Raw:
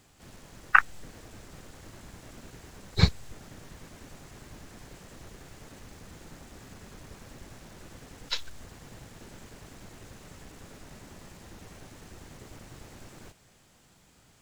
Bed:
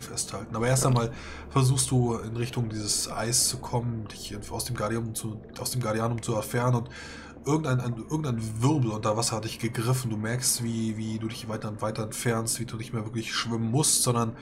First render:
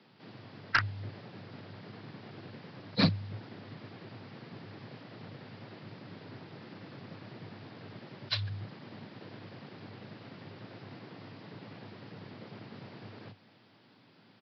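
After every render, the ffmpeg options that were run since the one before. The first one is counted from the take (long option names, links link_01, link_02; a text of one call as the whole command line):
ffmpeg -i in.wav -af "afreqshift=100,aresample=11025,asoftclip=type=hard:threshold=-19dB,aresample=44100" out.wav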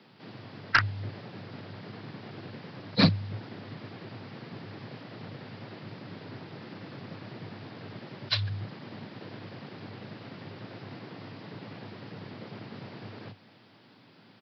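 ffmpeg -i in.wav -af "volume=4.5dB" out.wav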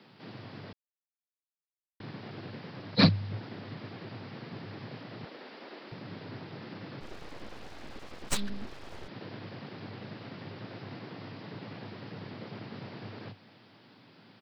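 ffmpeg -i in.wav -filter_complex "[0:a]asettb=1/sr,asplit=3[link_01][link_02][link_03];[link_01]atrim=end=5.254[link_04];[link_02]atrim=start=5.25:end=5.92,asetpts=PTS-STARTPTS,afade=type=in:duration=0.004:curve=qsin,afade=type=out:start_time=0.666:duration=0.004:curve=qsin,highpass=frequency=280:width=0.5412,highpass=frequency=280:width=1.3066[link_05];[link_03]atrim=start=5.916[link_06];[link_04][link_05]acrossfade=duration=0.004:curve1=hsin:curve2=qsin[link_07];[link_07][link_06]acrossfade=duration=0.004:curve1=qsin:curve2=hsin,asplit=3[link_08][link_09][link_10];[link_08]afade=type=out:start_time=7:duration=0.02[link_11];[link_09]aeval=exprs='abs(val(0))':channel_layout=same,afade=type=in:start_time=7:duration=0.02,afade=type=out:start_time=9.07:duration=0.02[link_12];[link_10]afade=type=in:start_time=9.07:duration=0.02[link_13];[link_11][link_12][link_13]amix=inputs=3:normalize=0,asplit=3[link_14][link_15][link_16];[link_14]atrim=end=0.73,asetpts=PTS-STARTPTS,afade=type=out:start_time=0.726:duration=0.004:curve=hsin[link_17];[link_15]atrim=start=0.73:end=2,asetpts=PTS-STARTPTS,volume=0[link_18];[link_16]atrim=start=2,asetpts=PTS-STARTPTS,afade=type=in:duration=0.004:curve=hsin[link_19];[link_17][link_18][link_19]concat=n=3:v=0:a=1" out.wav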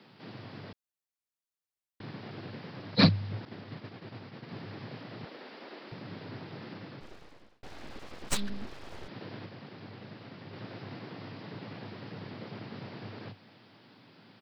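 ffmpeg -i in.wav -filter_complex "[0:a]asettb=1/sr,asplit=3[link_01][link_02][link_03];[link_01]atrim=end=3.454[link_04];[link_02]atrim=start=3.45:end=4.49,asetpts=PTS-STARTPTS,afade=type=in:duration=0.004:curve=qsin,afade=type=out:start_time=1.036:duration=0.004:curve=qsin,agate=range=-33dB:threshold=-41dB:ratio=3:release=100:detection=peak[link_05];[link_03]atrim=start=4.486[link_06];[link_04][link_05]acrossfade=duration=0.004:curve1=hsin:curve2=qsin[link_07];[link_07][link_06]acrossfade=duration=0.004:curve1=qsin:curve2=hsin,asplit=4[link_08][link_09][link_10][link_11];[link_08]atrim=end=7.63,asetpts=PTS-STARTPTS,afade=type=out:start_time=6.68:duration=0.95[link_12];[link_09]atrim=start=7.63:end=9.462,asetpts=PTS-STARTPTS,afade=type=in:duration=0.004:curve=hsin[link_13];[link_10]atrim=start=9.458:end=10.532,asetpts=PTS-STARTPTS,volume=-3.5dB[link_14];[link_11]atrim=start=10.528[link_15];[link_12][link_13]concat=n=2:v=0:a=1[link_16];[link_16][link_14]acrossfade=duration=0.004:curve1=hsin:curve2=hsin[link_17];[link_17][link_15]acrossfade=duration=0.004:curve1=hsin:curve2=hsin" out.wav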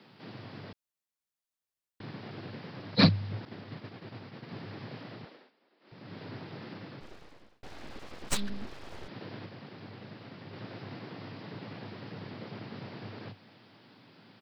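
ffmpeg -i in.wav -filter_complex "[0:a]asplit=3[link_01][link_02][link_03];[link_01]atrim=end=5.52,asetpts=PTS-STARTPTS,afade=type=out:start_time=5.08:duration=0.44:silence=0.0630957[link_04];[link_02]atrim=start=5.52:end=5.79,asetpts=PTS-STARTPTS,volume=-24dB[link_05];[link_03]atrim=start=5.79,asetpts=PTS-STARTPTS,afade=type=in:duration=0.44:silence=0.0630957[link_06];[link_04][link_05][link_06]concat=n=3:v=0:a=1" out.wav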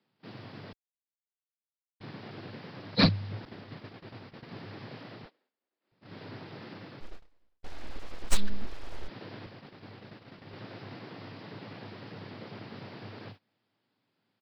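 ffmpeg -i in.wav -af "agate=range=-21dB:threshold=-47dB:ratio=16:detection=peak,asubboost=boost=4.5:cutoff=56" out.wav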